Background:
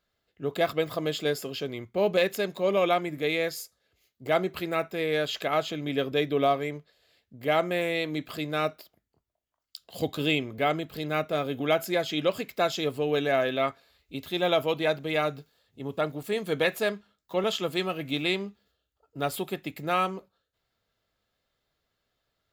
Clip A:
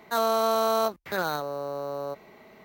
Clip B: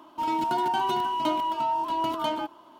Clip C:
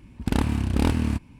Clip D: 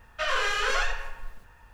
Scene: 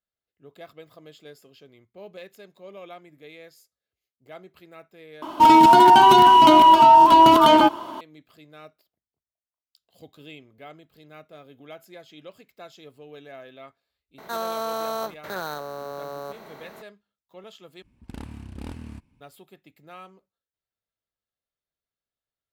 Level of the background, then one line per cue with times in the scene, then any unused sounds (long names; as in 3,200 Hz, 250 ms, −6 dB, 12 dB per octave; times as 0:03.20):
background −18 dB
0:05.22: overwrite with B −3.5 dB + boost into a limiter +20 dB
0:14.18: mix in A −5.5 dB + compressor on every frequency bin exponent 0.6
0:17.82: overwrite with C −15.5 dB
not used: D